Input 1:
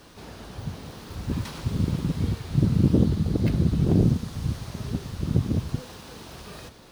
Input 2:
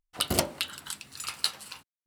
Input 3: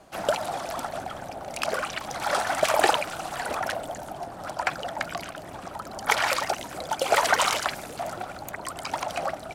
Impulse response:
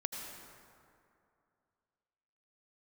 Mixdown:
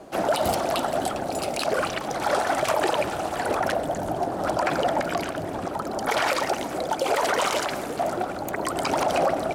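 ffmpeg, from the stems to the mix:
-filter_complex "[0:a]adelay=50,volume=-17dB[link_01];[1:a]adelay=150,volume=2.5dB[link_02];[2:a]equalizer=frequency=360:width=0.76:gain=11,volume=2.5dB,asplit=2[link_03][link_04];[link_04]volume=-11.5dB[link_05];[3:a]atrim=start_sample=2205[link_06];[link_05][link_06]afir=irnorm=-1:irlink=0[link_07];[link_01][link_02][link_03][link_07]amix=inputs=4:normalize=0,dynaudnorm=framelen=770:gausssize=3:maxgain=11.5dB,alimiter=limit=-13dB:level=0:latency=1:release=51"

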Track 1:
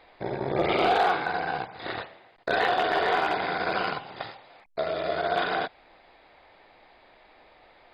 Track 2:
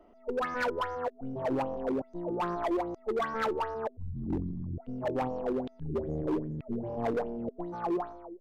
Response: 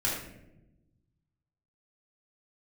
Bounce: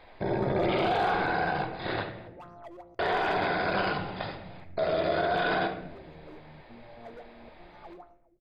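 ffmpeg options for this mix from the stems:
-filter_complex "[0:a]lowshelf=frequency=310:gain=7.5,volume=-2dB,asplit=3[link_01][link_02][link_03];[link_01]atrim=end=2.28,asetpts=PTS-STARTPTS,afade=type=out:start_time=2.276:duration=0.004:curve=hsin[link_04];[link_02]atrim=start=2.28:end=2.99,asetpts=PTS-STARTPTS,volume=0[link_05];[link_03]atrim=start=2.99,asetpts=PTS-STARTPTS,afade=type=in:duration=0.004:curve=hsin[link_06];[link_04][link_05][link_06]concat=n=3:v=0:a=1,asplit=2[link_07][link_08];[link_08]volume=-11dB[link_09];[1:a]agate=range=-8dB:threshold=-43dB:ratio=16:detection=peak,aecho=1:1:1.5:0.31,volume=-16.5dB,asplit=2[link_10][link_11];[link_11]volume=-23dB[link_12];[2:a]atrim=start_sample=2205[link_13];[link_09][link_12]amix=inputs=2:normalize=0[link_14];[link_14][link_13]afir=irnorm=-1:irlink=0[link_15];[link_07][link_10][link_15]amix=inputs=3:normalize=0,alimiter=limit=-18.5dB:level=0:latency=1:release=21"

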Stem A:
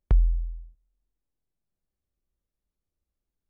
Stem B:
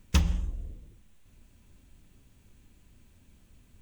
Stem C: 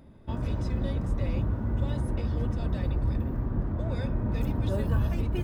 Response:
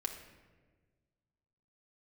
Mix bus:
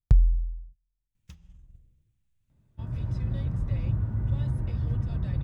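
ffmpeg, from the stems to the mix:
-filter_complex "[0:a]adynamicsmooth=sensitivity=1:basefreq=580,volume=0.5dB[link_01];[1:a]acompressor=threshold=-31dB:ratio=12,asoftclip=type=tanh:threshold=-22dB,adelay=1150,volume=-15.5dB,asplit=2[link_02][link_03];[link_03]volume=-7dB[link_04];[2:a]highshelf=frequency=4200:gain=-6.5,dynaudnorm=framelen=110:gausssize=9:maxgain=5dB,adelay=2500,volume=-8.5dB[link_05];[3:a]atrim=start_sample=2205[link_06];[link_04][link_06]afir=irnorm=-1:irlink=0[link_07];[link_01][link_02][link_05][link_07]amix=inputs=4:normalize=0,agate=range=-7dB:threshold=-47dB:ratio=16:detection=peak,equalizer=frequency=125:width_type=o:width=1:gain=10,equalizer=frequency=250:width_type=o:width=1:gain=-6,equalizer=frequency=500:width_type=o:width=1:gain=-5,equalizer=frequency=1000:width_type=o:width=1:gain=-3"

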